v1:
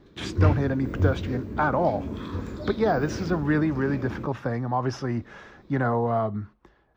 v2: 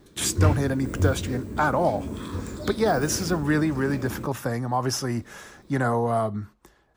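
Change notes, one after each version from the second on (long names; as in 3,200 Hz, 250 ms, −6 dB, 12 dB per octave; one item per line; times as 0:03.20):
speech: remove high-frequency loss of the air 240 metres
background: remove moving average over 5 samples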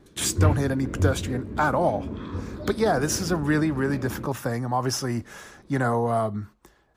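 background: add high-frequency loss of the air 250 metres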